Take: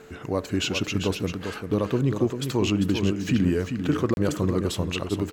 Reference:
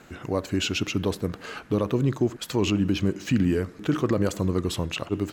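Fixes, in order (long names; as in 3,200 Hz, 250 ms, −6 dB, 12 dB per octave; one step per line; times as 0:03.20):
notch filter 440 Hz, Q 30
repair the gap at 0:04.14, 31 ms
echo removal 395 ms −7.5 dB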